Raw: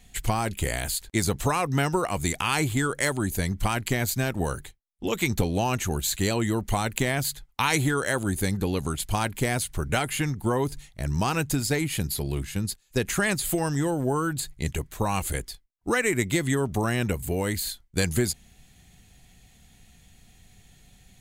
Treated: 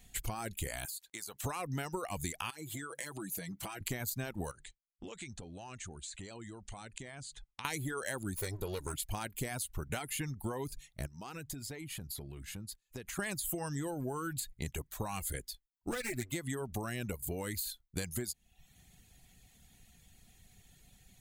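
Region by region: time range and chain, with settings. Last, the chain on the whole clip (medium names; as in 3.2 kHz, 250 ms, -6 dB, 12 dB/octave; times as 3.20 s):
0.85–1.44 s: high-pass 1.1 kHz 6 dB/octave + compression, threshold -35 dBFS
2.50–3.81 s: high-pass 160 Hz + comb 6.1 ms, depth 60% + compression 16:1, threshold -31 dBFS
4.51–7.65 s: compression, threshold -36 dBFS + Chebyshev low-pass 9.2 kHz, order 6
8.36–8.94 s: comb filter that takes the minimum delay 2.1 ms + peaking EQ 2.8 kHz -4 dB 0.22 oct
11.06–13.19 s: treble shelf 7.3 kHz -5.5 dB + compression 8:1, threshold -34 dBFS
15.91–16.32 s: comb filter that takes the minimum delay 8.1 ms + peaking EQ 900 Hz -6.5 dB 0.56 oct
whole clip: reverb removal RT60 0.61 s; treble shelf 11 kHz +9 dB; compression, threshold -28 dBFS; trim -6 dB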